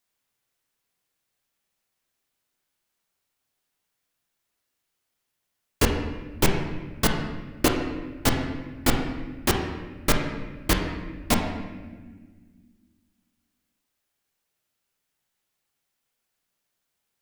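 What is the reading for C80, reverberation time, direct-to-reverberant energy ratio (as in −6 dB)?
6.0 dB, 1.5 s, 1.5 dB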